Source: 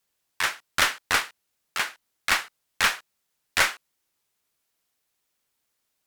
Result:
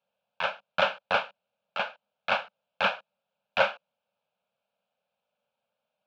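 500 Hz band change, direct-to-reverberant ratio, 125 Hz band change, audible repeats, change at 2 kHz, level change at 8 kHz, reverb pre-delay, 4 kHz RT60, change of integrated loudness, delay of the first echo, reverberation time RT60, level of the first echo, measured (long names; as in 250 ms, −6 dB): +8.5 dB, no reverb audible, −3.5 dB, no echo audible, −5.5 dB, below −25 dB, no reverb audible, no reverb audible, −4.0 dB, no echo audible, no reverb audible, no echo audible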